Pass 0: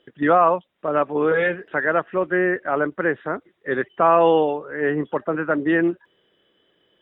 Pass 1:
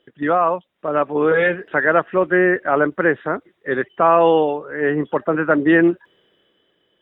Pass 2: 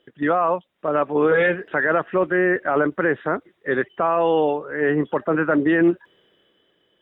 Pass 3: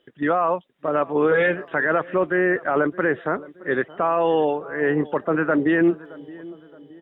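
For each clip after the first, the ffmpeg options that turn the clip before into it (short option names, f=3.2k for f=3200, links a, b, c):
-af "dynaudnorm=f=190:g=9:m=11.5dB,volume=-1.5dB"
-af "alimiter=limit=-10dB:level=0:latency=1:release=14"
-filter_complex "[0:a]asplit=2[a][b];[b]adelay=620,lowpass=f=1.1k:p=1,volume=-19dB,asplit=2[c][d];[d]adelay=620,lowpass=f=1.1k:p=1,volume=0.53,asplit=2[e][f];[f]adelay=620,lowpass=f=1.1k:p=1,volume=0.53,asplit=2[g][h];[h]adelay=620,lowpass=f=1.1k:p=1,volume=0.53[i];[a][c][e][g][i]amix=inputs=5:normalize=0,volume=-1dB"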